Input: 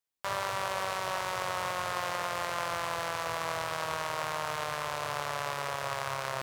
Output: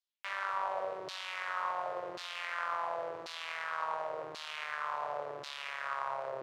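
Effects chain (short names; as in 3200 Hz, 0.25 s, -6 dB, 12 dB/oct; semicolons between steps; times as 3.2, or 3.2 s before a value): LFO band-pass saw down 0.92 Hz 320–4400 Hz; gain +2.5 dB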